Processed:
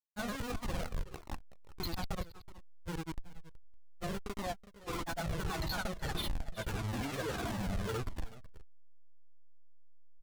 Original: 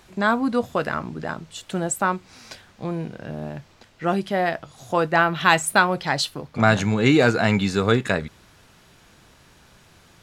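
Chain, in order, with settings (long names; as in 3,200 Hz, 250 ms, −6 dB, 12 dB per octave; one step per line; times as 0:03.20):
hearing-aid frequency compression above 3,400 Hz 4 to 1
notch filter 610 Hz, Q 12
comparator with hysteresis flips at −23 dBFS
granular cloud
slack as between gear wheels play −37 dBFS
single-tap delay 374 ms −16.5 dB
flanger whose copies keep moving one way falling 1.6 Hz
level −6.5 dB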